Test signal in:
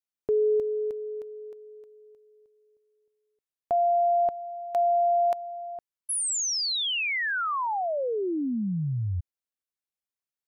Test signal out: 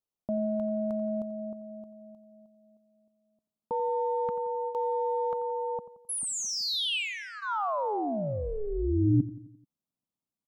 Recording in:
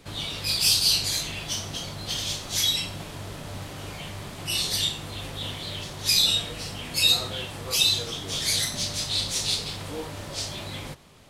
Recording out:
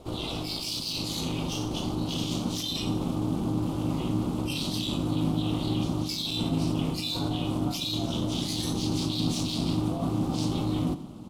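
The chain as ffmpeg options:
-filter_complex "[0:a]bandreject=f=1400:w=25,asplit=2[s0][s1];[s1]adynamicsmooth=sensitivity=2.5:basefreq=2400,volume=1.12[s2];[s0][s2]amix=inputs=2:normalize=0,firequalizer=gain_entry='entry(1000,0);entry(1600,-21);entry(2900,-3)':delay=0.05:min_phase=1,areverse,acompressor=threshold=0.0501:ratio=10:attack=1.3:release=133:knee=1:detection=peak,areverse,asubboost=boost=5.5:cutoff=85,aeval=exprs='val(0)*sin(2*PI*210*n/s)':c=same,aecho=1:1:87|174|261|348|435:0.168|0.089|0.0472|0.025|0.0132,volume=1.26"

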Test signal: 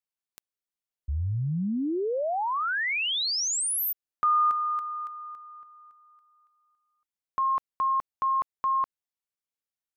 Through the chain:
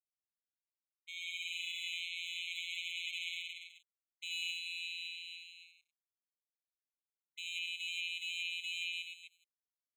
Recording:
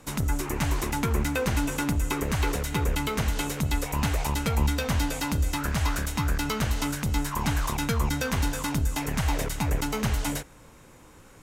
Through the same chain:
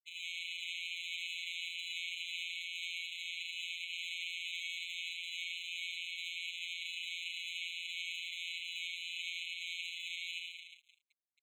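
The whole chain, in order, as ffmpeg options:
-filter_complex "[0:a]alimiter=limit=0.119:level=0:latency=1,aresample=11025,acrusher=samples=24:mix=1:aa=0.000001,aresample=44100,aecho=1:1:80|176|291.2|429.4|595.3:0.631|0.398|0.251|0.158|0.1,aeval=exprs='sgn(val(0))*max(abs(val(0))-0.00841,0)':c=same,asplit=2[s0][s1];[s1]highpass=f=720:p=1,volume=15.8,asoftclip=type=tanh:threshold=0.224[s2];[s0][s2]amix=inputs=2:normalize=0,lowpass=f=1700:p=1,volume=0.501,afftfilt=real='hypot(re,im)*cos(PI*b)':imag='0':win_size=1024:overlap=0.75,afftfilt=real='re*eq(mod(floor(b*sr/1024/2100),2),1)':imag='im*eq(mod(floor(b*sr/1024/2100),2),1)':win_size=1024:overlap=0.75,volume=1.33"

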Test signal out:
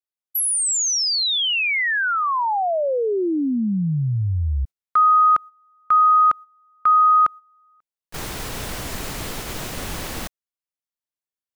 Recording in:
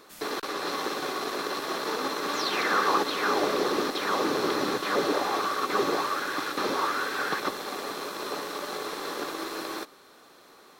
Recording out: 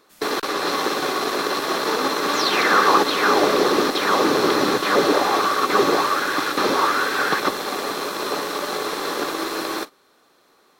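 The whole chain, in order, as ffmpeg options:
-af "agate=range=0.224:threshold=0.0112:ratio=16:detection=peak,volume=2.66"

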